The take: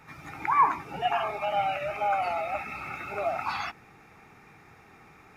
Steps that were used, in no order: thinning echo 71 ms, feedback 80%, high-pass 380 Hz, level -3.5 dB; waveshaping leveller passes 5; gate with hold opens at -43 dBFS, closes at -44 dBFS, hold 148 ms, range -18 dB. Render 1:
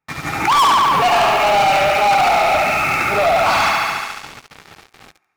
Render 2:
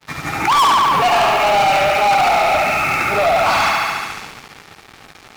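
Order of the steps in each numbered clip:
gate with hold > thinning echo > waveshaping leveller; thinning echo > waveshaping leveller > gate with hold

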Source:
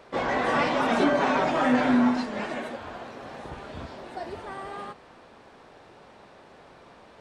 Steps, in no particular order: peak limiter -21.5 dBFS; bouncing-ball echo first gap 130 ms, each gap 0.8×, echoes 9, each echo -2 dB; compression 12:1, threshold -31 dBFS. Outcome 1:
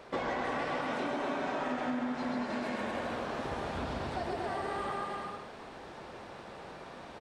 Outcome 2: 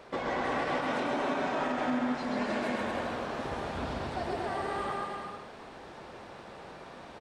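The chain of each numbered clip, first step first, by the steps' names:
bouncing-ball echo > compression > peak limiter; compression > bouncing-ball echo > peak limiter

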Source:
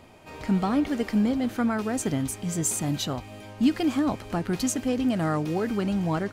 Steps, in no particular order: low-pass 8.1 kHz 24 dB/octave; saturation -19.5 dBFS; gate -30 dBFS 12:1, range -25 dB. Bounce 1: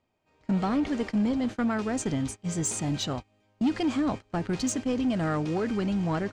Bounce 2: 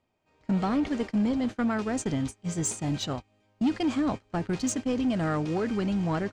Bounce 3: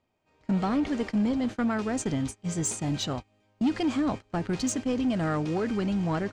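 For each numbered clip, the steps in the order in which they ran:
gate > low-pass > saturation; low-pass > saturation > gate; low-pass > gate > saturation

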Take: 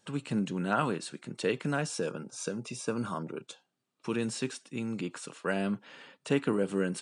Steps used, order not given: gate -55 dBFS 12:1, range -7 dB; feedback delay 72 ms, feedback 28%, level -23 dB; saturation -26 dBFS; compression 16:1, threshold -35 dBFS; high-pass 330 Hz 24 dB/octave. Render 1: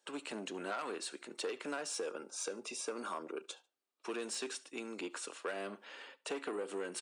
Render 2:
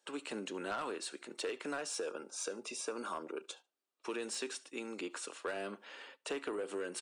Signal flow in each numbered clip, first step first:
saturation > high-pass > gate > feedback delay > compression; high-pass > saturation > compression > feedback delay > gate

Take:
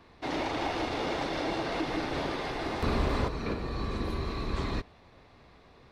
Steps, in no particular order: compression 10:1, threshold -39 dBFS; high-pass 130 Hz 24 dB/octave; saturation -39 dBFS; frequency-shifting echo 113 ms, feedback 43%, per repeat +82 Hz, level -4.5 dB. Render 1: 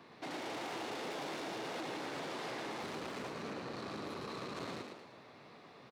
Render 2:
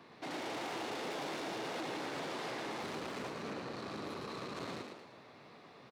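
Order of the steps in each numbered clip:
saturation > high-pass > compression > frequency-shifting echo; saturation > compression > high-pass > frequency-shifting echo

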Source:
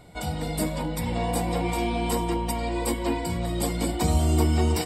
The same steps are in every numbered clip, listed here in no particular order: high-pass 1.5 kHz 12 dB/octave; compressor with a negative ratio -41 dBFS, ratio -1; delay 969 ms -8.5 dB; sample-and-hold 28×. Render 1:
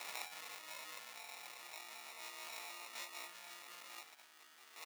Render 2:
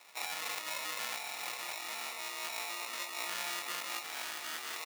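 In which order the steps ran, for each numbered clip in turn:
sample-and-hold > delay > compressor with a negative ratio > high-pass; sample-and-hold > high-pass > compressor with a negative ratio > delay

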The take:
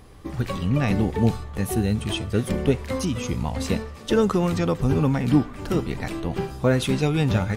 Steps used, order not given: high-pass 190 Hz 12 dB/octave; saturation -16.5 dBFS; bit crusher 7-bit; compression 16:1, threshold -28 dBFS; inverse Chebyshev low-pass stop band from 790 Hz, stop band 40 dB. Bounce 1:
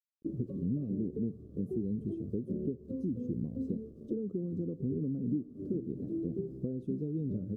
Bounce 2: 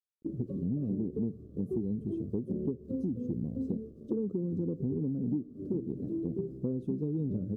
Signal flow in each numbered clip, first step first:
high-pass > bit crusher > compression > saturation > inverse Chebyshev low-pass; high-pass > bit crusher > inverse Chebyshev low-pass > compression > saturation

